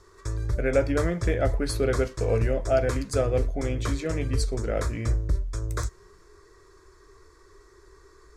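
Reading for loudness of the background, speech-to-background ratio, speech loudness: -31.0 LUFS, 2.5 dB, -28.5 LUFS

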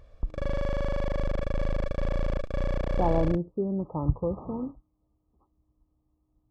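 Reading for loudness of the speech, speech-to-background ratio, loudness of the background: -30.5 LUFS, 2.0 dB, -32.5 LUFS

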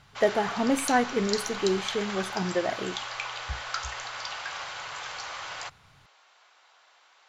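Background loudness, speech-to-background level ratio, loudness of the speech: -34.5 LUFS, 6.5 dB, -28.0 LUFS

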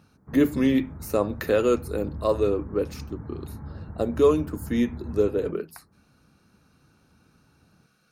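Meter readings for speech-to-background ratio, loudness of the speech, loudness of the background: 14.5 dB, -25.0 LUFS, -39.5 LUFS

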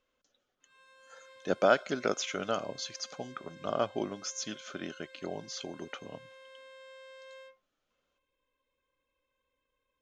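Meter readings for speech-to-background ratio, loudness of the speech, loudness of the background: 19.5 dB, -34.5 LUFS, -54.0 LUFS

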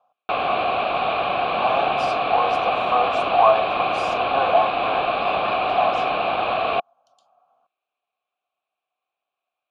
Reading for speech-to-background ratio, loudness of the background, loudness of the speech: -2.0 dB, -22.0 LUFS, -24.0 LUFS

